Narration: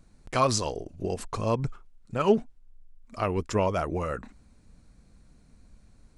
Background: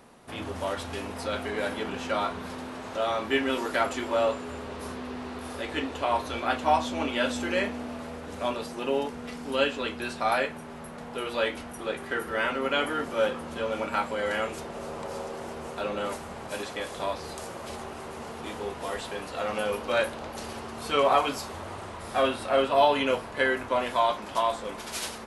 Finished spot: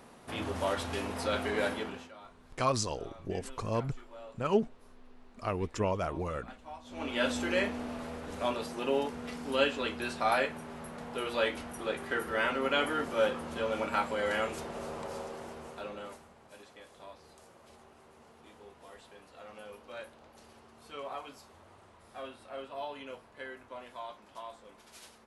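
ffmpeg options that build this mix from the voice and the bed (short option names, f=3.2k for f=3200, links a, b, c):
-filter_complex "[0:a]adelay=2250,volume=-5.5dB[a];[1:a]volume=20.5dB,afade=t=out:st=1.62:d=0.49:silence=0.0707946,afade=t=in:st=6.84:d=0.41:silence=0.0891251,afade=t=out:st=14.77:d=1.57:silence=0.149624[b];[a][b]amix=inputs=2:normalize=0"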